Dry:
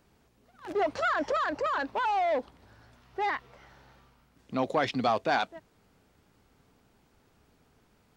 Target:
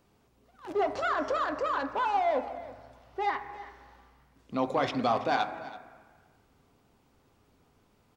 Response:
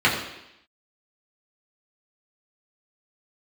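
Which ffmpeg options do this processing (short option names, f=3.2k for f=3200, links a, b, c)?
-filter_complex "[0:a]aecho=1:1:329:0.141,asplit=2[a][b];[1:a]atrim=start_sample=2205,asetrate=23814,aresample=44100[c];[b][c]afir=irnorm=-1:irlink=0,volume=-30dB[d];[a][d]amix=inputs=2:normalize=0,volume=-2dB"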